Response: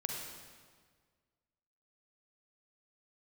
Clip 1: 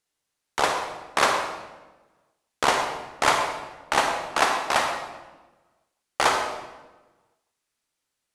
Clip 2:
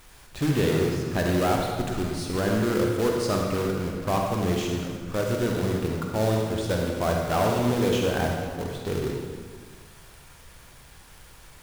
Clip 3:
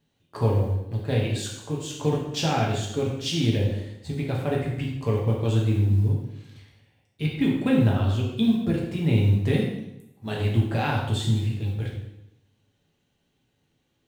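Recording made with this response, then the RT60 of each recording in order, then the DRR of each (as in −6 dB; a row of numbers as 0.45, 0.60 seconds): 2; 1.2, 1.7, 0.85 seconds; 3.0, 0.0, −3.0 decibels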